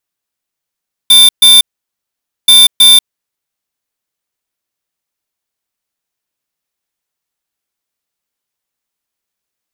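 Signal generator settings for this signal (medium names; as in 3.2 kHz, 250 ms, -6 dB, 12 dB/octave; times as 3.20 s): beep pattern square 3.57 kHz, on 0.19 s, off 0.13 s, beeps 2, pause 0.87 s, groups 2, -3.5 dBFS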